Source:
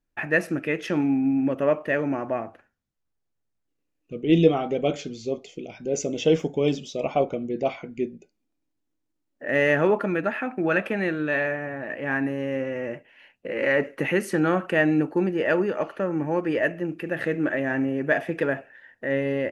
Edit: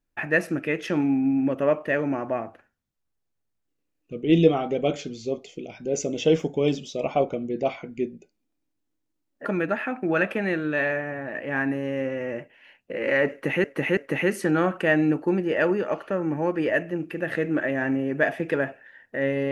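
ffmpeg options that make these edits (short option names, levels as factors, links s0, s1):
-filter_complex "[0:a]asplit=4[s0][s1][s2][s3];[s0]atrim=end=9.452[s4];[s1]atrim=start=9.998:end=14.192[s5];[s2]atrim=start=13.858:end=14.192[s6];[s3]atrim=start=13.858[s7];[s4][s5]acrossfade=d=0.004:c1=hsin:c2=hsin[s8];[s8][s6]acrossfade=d=0.004:c1=hsin:c2=hsin[s9];[s9][s7]acrossfade=d=0.004:c1=hsin:c2=hsin"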